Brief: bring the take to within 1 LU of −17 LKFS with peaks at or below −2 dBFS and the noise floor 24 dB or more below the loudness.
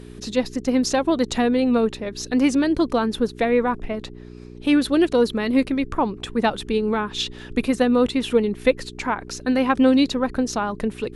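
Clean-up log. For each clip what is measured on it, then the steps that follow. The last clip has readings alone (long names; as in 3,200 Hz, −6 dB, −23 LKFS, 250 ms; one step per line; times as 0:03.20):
mains hum 60 Hz; hum harmonics up to 420 Hz; level of the hum −36 dBFS; integrated loudness −21.5 LKFS; sample peak −5.0 dBFS; target loudness −17.0 LKFS
→ hum removal 60 Hz, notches 7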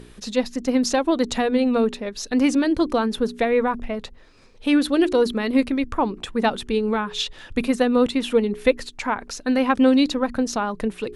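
mains hum none found; integrated loudness −22.0 LKFS; sample peak −5.5 dBFS; target loudness −17.0 LKFS
→ level +5 dB
brickwall limiter −2 dBFS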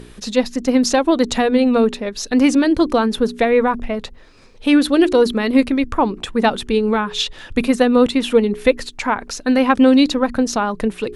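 integrated loudness −17.0 LKFS; sample peak −2.0 dBFS; background noise floor −42 dBFS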